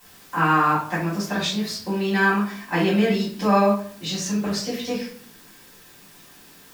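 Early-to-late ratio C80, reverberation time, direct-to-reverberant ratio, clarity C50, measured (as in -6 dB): 10.0 dB, 0.50 s, -10.0 dB, 5.5 dB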